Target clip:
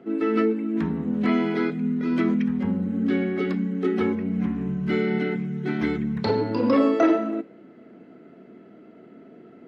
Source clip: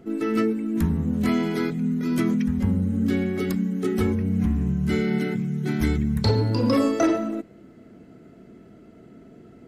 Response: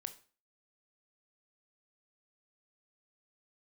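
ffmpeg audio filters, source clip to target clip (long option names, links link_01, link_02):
-filter_complex "[0:a]acrossover=split=7200[link_01][link_02];[link_02]acompressor=threshold=-55dB:ratio=4:attack=1:release=60[link_03];[link_01][link_03]amix=inputs=2:normalize=0,acrossover=split=180 3700:gain=0.0708 1 0.1[link_04][link_05][link_06];[link_04][link_05][link_06]amix=inputs=3:normalize=0,asplit=2[link_07][link_08];[1:a]atrim=start_sample=2205[link_09];[link_08][link_09]afir=irnorm=-1:irlink=0,volume=1dB[link_10];[link_07][link_10]amix=inputs=2:normalize=0,volume=-2.5dB"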